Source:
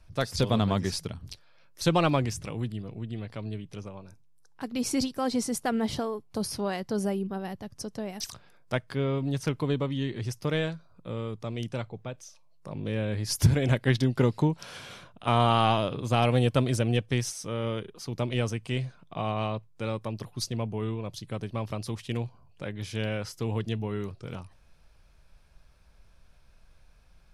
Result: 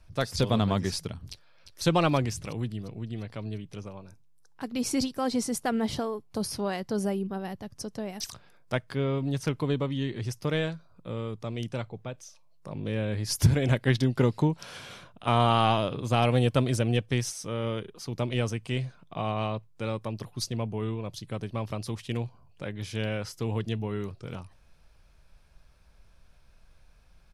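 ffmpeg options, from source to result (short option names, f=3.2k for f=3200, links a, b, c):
-filter_complex "[0:a]asplit=2[a][b];[b]afade=t=in:st=1.3:d=0.01,afade=t=out:st=1.82:d=0.01,aecho=0:1:350|700|1050|1400|1750|2100:0.334965|0.184231|0.101327|0.0557299|0.0306514|0.0168583[c];[a][c]amix=inputs=2:normalize=0"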